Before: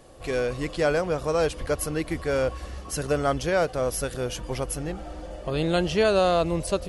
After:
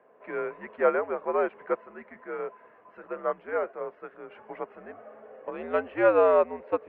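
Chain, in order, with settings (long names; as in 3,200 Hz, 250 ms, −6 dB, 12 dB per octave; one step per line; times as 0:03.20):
low shelf with overshoot 510 Hz −7.5 dB, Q 1.5
single-sideband voice off tune −90 Hz 290–2,200 Hz
0:01.81–0:04.31: flanger 1.4 Hz, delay 5.7 ms, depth 5.1 ms, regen −76%
expander for the loud parts 1.5 to 1, over −36 dBFS
level +3 dB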